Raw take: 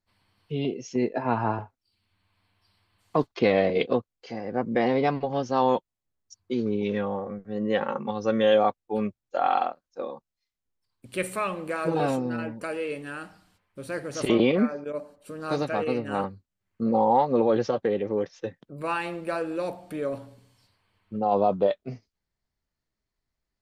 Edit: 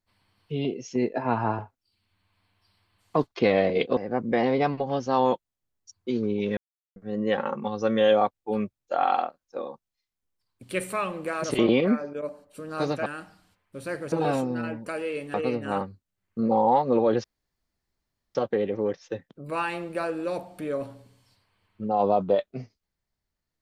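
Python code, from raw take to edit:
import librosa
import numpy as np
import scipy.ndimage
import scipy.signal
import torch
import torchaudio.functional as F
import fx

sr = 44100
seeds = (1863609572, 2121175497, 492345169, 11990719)

y = fx.edit(x, sr, fx.cut(start_s=3.97, length_s=0.43),
    fx.silence(start_s=7.0, length_s=0.39),
    fx.swap(start_s=11.87, length_s=1.22, other_s=14.15, other_length_s=1.62),
    fx.insert_room_tone(at_s=17.67, length_s=1.11), tone=tone)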